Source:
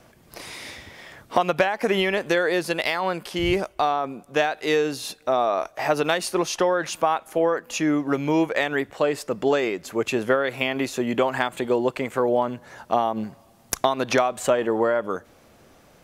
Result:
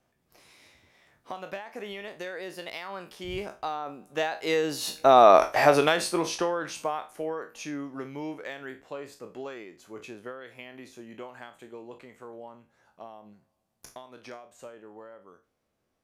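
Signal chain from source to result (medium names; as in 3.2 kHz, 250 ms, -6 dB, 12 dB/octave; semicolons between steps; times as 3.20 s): spectral sustain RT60 0.30 s; Doppler pass-by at 5.33 s, 15 m/s, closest 2.9 m; trim +8 dB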